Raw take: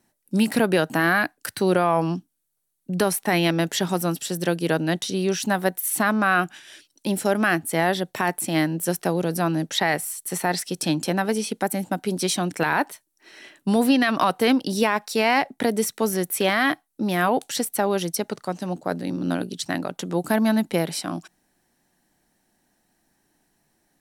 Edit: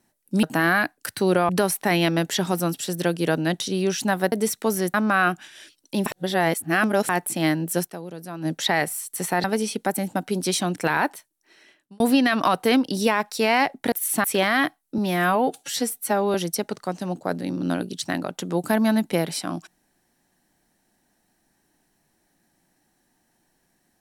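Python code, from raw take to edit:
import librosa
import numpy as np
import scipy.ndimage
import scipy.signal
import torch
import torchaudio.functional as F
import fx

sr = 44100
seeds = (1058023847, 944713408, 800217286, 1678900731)

y = fx.edit(x, sr, fx.cut(start_s=0.43, length_s=0.4),
    fx.cut(start_s=1.89, length_s=1.02),
    fx.swap(start_s=5.74, length_s=0.32, other_s=15.68, other_length_s=0.62),
    fx.reverse_span(start_s=7.18, length_s=1.03),
    fx.fade_down_up(start_s=8.97, length_s=0.61, db=-12.5, fade_s=0.27, curve='exp'),
    fx.cut(start_s=10.56, length_s=0.64),
    fx.fade_out_span(start_s=12.75, length_s=1.01),
    fx.stretch_span(start_s=17.04, length_s=0.91, factor=1.5), tone=tone)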